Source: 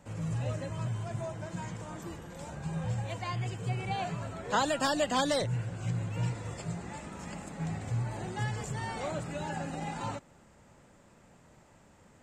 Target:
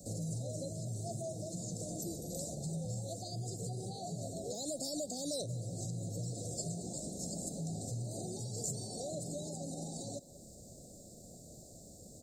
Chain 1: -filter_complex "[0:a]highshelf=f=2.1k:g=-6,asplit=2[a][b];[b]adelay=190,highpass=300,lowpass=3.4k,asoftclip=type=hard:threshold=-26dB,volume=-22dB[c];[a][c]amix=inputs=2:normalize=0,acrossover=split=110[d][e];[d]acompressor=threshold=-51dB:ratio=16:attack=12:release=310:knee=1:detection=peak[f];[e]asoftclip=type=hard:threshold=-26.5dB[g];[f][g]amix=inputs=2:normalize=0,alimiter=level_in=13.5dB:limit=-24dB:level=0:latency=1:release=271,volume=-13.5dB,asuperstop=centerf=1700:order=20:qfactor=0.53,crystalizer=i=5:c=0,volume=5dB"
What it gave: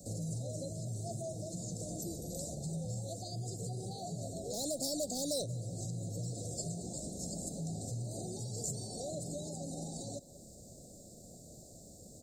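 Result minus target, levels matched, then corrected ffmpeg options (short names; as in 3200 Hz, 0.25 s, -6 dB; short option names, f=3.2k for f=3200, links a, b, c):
hard clip: distortion +21 dB; compressor: peak gain reduction -6 dB
-filter_complex "[0:a]highshelf=f=2.1k:g=-6,asplit=2[a][b];[b]adelay=190,highpass=300,lowpass=3.4k,asoftclip=type=hard:threshold=-26dB,volume=-22dB[c];[a][c]amix=inputs=2:normalize=0,acrossover=split=110[d][e];[d]acompressor=threshold=-57.5dB:ratio=16:attack=12:release=310:knee=1:detection=peak[f];[e]asoftclip=type=hard:threshold=-20.5dB[g];[f][g]amix=inputs=2:normalize=0,alimiter=level_in=13.5dB:limit=-24dB:level=0:latency=1:release=271,volume=-13.5dB,asuperstop=centerf=1700:order=20:qfactor=0.53,crystalizer=i=5:c=0,volume=5dB"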